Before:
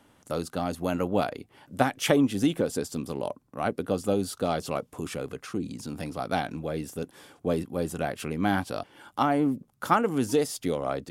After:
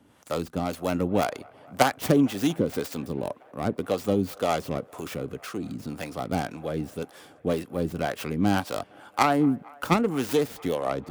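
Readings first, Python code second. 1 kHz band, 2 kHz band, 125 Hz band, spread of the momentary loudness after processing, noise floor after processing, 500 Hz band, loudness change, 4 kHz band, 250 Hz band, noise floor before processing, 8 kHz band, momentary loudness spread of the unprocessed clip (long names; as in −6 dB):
+1.0 dB, +1.5 dB, +2.5 dB, 12 LU, −54 dBFS, +1.0 dB, +1.5 dB, +1.0 dB, +1.5 dB, −64 dBFS, −1.0 dB, 11 LU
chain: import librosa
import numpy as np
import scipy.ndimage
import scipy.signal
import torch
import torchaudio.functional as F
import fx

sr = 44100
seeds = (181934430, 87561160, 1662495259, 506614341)

y = fx.tracing_dist(x, sr, depth_ms=0.39)
y = fx.harmonic_tremolo(y, sr, hz=1.9, depth_pct=70, crossover_hz=440.0)
y = scipy.signal.sosfilt(scipy.signal.butter(2, 56.0, 'highpass', fs=sr, output='sos'), y)
y = fx.echo_wet_bandpass(y, sr, ms=229, feedback_pct=81, hz=1100.0, wet_db=-23.5)
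y = F.gain(torch.from_numpy(y), 4.5).numpy()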